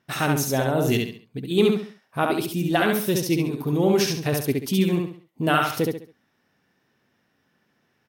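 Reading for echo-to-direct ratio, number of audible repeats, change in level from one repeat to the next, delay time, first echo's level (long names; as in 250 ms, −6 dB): −2.5 dB, 4, −9.5 dB, 68 ms, −3.0 dB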